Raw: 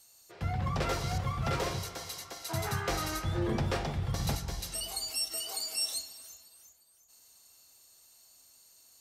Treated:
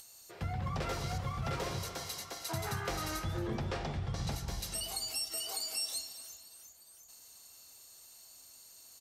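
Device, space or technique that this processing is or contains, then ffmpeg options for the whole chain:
upward and downward compression: -filter_complex "[0:a]acompressor=mode=upward:threshold=-49dB:ratio=2.5,acompressor=threshold=-34dB:ratio=3,asettb=1/sr,asplit=3[link_01][link_02][link_03];[link_01]atrim=end=3.374[link_04];[link_02]atrim=start=3.37:end=4.32,asetpts=PTS-STARTPTS,afade=type=in:duration=0.004:curve=qsin,afade=type=out:start_time=0.946:duration=0.004:curve=qsin,lowpass=7300[link_05];[link_03]atrim=start=4.316[link_06];[link_04][link_05]acrossfade=duration=0.004:curve1=hsin:curve2=qsin[link_07];[link_07][link_06]acrossfade=duration=0.004:curve1=qsin:curve2=hsin,asplit=4[link_08][link_09][link_10][link_11];[link_09]adelay=227,afreqshift=31,volume=-16dB[link_12];[link_10]adelay=454,afreqshift=62,volume=-25.6dB[link_13];[link_11]adelay=681,afreqshift=93,volume=-35.3dB[link_14];[link_08][link_12][link_13][link_14]amix=inputs=4:normalize=0"

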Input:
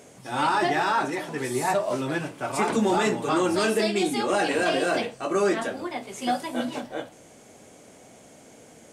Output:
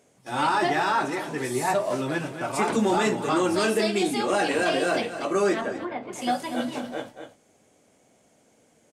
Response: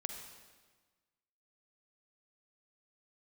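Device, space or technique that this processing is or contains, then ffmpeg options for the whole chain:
ducked delay: -filter_complex "[0:a]agate=range=-12dB:threshold=-40dB:ratio=16:detection=peak,asettb=1/sr,asplit=3[link_01][link_02][link_03];[link_01]atrim=end=5.614[link_04];[link_02]atrim=start=5.61:end=6.13,asetpts=PTS-STARTPTS,afade=type=in:duration=0.004:curve=qsin,afade=type=out:start_time=0.516:duration=0.004:curve=qsin,lowpass=2100[link_05];[link_03]atrim=start=6.126[link_06];[link_04][link_05]acrossfade=duration=0.004:curve1=hsin:curve2=qsin[link_07];[link_07][link_06]acrossfade=duration=0.004:curve1=qsin:curve2=hsin,asplit=3[link_08][link_09][link_10];[link_09]adelay=239,volume=-8.5dB[link_11];[link_10]apad=whole_len=403977[link_12];[link_11][link_12]sidechaincompress=threshold=-34dB:ratio=8:attack=47:release=193[link_13];[link_08][link_13]amix=inputs=2:normalize=0"

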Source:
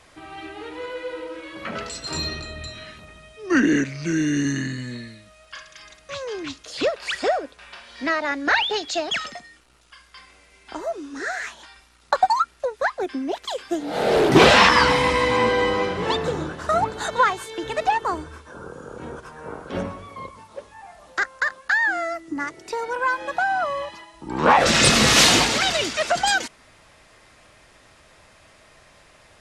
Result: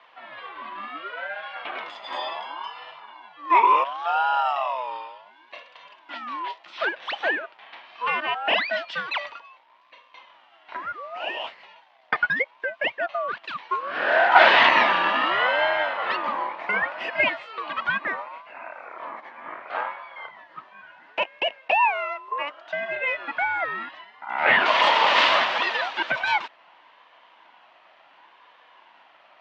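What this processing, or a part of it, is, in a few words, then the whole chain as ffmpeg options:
voice changer toy: -filter_complex "[0:a]aeval=exprs='val(0)*sin(2*PI*900*n/s+900*0.25/0.7*sin(2*PI*0.7*n/s))':channel_layout=same,highpass=430,equalizer=frequency=430:width_type=q:width=4:gain=-7,equalizer=frequency=650:width_type=q:width=4:gain=6,equalizer=frequency=980:width_type=q:width=4:gain=9,equalizer=frequency=1900:width_type=q:width=4:gain=3,equalizer=frequency=3000:width_type=q:width=4:gain=3,lowpass=frequency=3500:width=0.5412,lowpass=frequency=3500:width=1.3066,asettb=1/sr,asplit=3[link_01][link_02][link_03];[link_01]atrim=end=1.174[link_04];[link_02]atrim=start=1.17:end=1.62,asetpts=PTS-STARTPTS,afade=type=in:duration=0.004:curve=qsin,afade=type=out:start_time=0.446:duration=0.004:curve=qsin,equalizer=frequency=1800:width_type=o:width=1.6:gain=5.5[link_05];[link_03]atrim=start=1.616[link_06];[link_04][link_05]acrossfade=duration=0.004:curve1=hsin:curve2=qsin[link_07];[link_07][link_06]acrossfade=duration=0.004:curve1=qsin:curve2=hsin,volume=-1dB"

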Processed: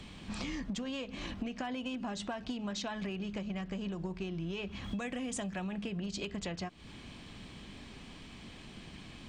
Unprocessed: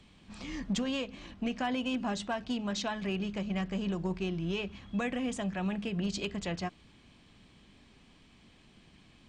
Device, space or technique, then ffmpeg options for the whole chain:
serial compression, leveller first: -filter_complex "[0:a]acompressor=threshold=-35dB:ratio=2,acompressor=threshold=-46dB:ratio=6,asettb=1/sr,asplit=3[link_01][link_02][link_03];[link_01]atrim=end=4.844[link_04];[link_02]atrim=start=4.84:end=5.64,asetpts=PTS-STARTPTS,afade=type=in:duration=0.004:curve=qsin,afade=type=out:start_time=0.796:duration=0.004:curve=qsin,highshelf=frequency=6200:gain=10[link_05];[link_03]atrim=start=5.636[link_06];[link_04][link_05]acrossfade=duration=0.004:curve1=hsin:curve2=qsin[link_07];[link_07][link_06]acrossfade=duration=0.004:curve1=qsin:curve2=hsin,volume=10dB"

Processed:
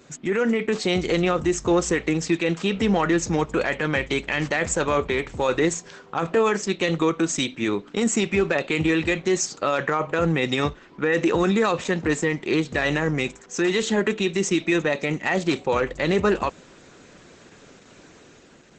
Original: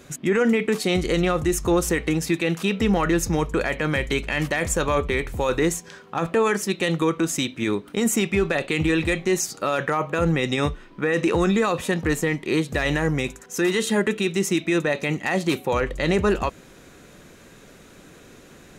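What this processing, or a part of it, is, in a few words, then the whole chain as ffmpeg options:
video call: -af "highpass=frequency=150:poles=1,dynaudnorm=framelen=120:gausssize=11:maxgain=3.5dB,volume=-2dB" -ar 48000 -c:a libopus -b:a 12k

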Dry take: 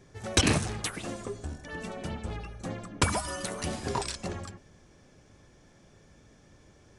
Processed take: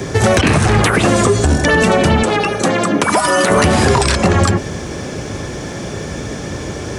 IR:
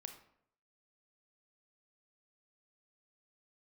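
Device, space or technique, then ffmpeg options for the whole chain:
mastering chain: -filter_complex "[0:a]highpass=58,equalizer=frequency=410:width_type=o:width=0.82:gain=3,acrossover=split=170|800|2400[link_01][link_02][link_03][link_04];[link_01]acompressor=threshold=-38dB:ratio=4[link_05];[link_02]acompressor=threshold=-41dB:ratio=4[link_06];[link_03]acompressor=threshold=-40dB:ratio=4[link_07];[link_04]acompressor=threshold=-49dB:ratio=4[link_08];[link_05][link_06][link_07][link_08]amix=inputs=4:normalize=0,acompressor=threshold=-39dB:ratio=3,asoftclip=type=tanh:threshold=-29dB,alimiter=level_in=35.5dB:limit=-1dB:release=50:level=0:latency=1,asettb=1/sr,asplit=3[link_09][link_10][link_11];[link_09]atrim=end=2.234[link_12];[link_10]atrim=start=2.23:end=3.5,asetpts=PTS-STARTPTS,afade=type=in:duration=0.004:curve=qsin,afade=type=out:start_time=1.266:duration=0.004:curve=qsin,highpass=230[link_13];[link_11]atrim=start=3.496[link_14];[link_12][link_13]acrossfade=duration=0.004:curve1=hsin:curve2=qsin[link_15];[link_15][link_14]acrossfade=duration=0.004:curve1=qsin:curve2=hsin,volume=-2.5dB"

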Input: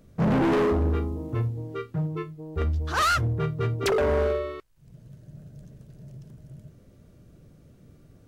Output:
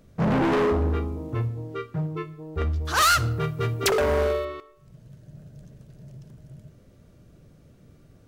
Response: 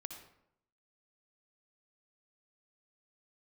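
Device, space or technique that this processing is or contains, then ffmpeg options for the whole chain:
filtered reverb send: -filter_complex "[0:a]asplit=2[link_01][link_02];[link_02]highpass=430,lowpass=8800[link_03];[1:a]atrim=start_sample=2205[link_04];[link_03][link_04]afir=irnorm=-1:irlink=0,volume=-6dB[link_05];[link_01][link_05]amix=inputs=2:normalize=0,asettb=1/sr,asplit=3[link_06][link_07][link_08];[link_06]atrim=end=2.854[link_09];[link_07]atrim=start=2.85:end=4.45,asetpts=PTS-STARTPTS,afade=type=in:duration=0.004:curve=qsin,afade=type=out:start_time=1.596:duration=0.004:curve=qsin,aemphasis=mode=production:type=50kf[link_10];[link_08]atrim=start=4.446[link_11];[link_09][link_10]acrossfade=duration=0.004:curve1=hsin:curve2=qsin[link_12];[link_12][link_11]acrossfade=duration=0.004:curve1=qsin:curve2=hsin"

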